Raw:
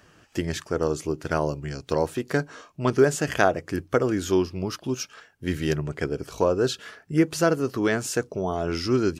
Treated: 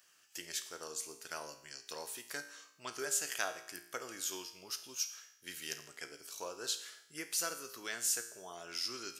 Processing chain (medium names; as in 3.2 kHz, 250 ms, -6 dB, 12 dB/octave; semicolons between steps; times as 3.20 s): differentiator; feedback comb 58 Hz, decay 0.74 s, harmonics all, mix 70%; trim +7 dB